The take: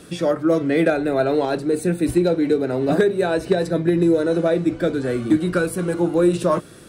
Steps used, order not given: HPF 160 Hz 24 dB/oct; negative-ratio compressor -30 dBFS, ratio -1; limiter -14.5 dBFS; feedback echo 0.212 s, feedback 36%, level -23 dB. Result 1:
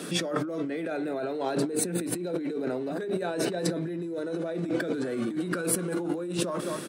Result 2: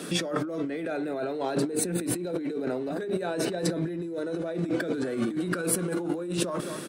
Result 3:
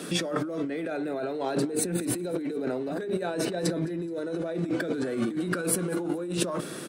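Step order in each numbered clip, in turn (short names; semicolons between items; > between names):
feedback echo > limiter > negative-ratio compressor > HPF; HPF > limiter > feedback echo > negative-ratio compressor; limiter > HPF > negative-ratio compressor > feedback echo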